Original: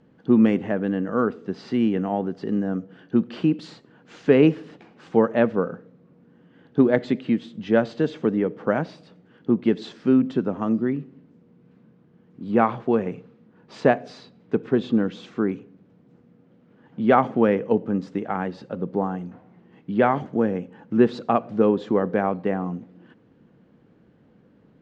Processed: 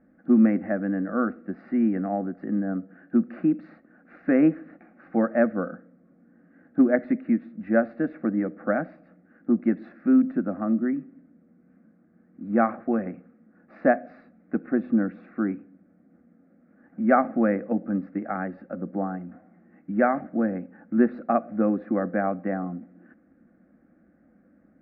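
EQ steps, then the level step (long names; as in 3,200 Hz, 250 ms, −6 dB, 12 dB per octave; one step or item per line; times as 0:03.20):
low-pass filter 2,300 Hz 24 dB per octave
phaser with its sweep stopped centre 640 Hz, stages 8
0.0 dB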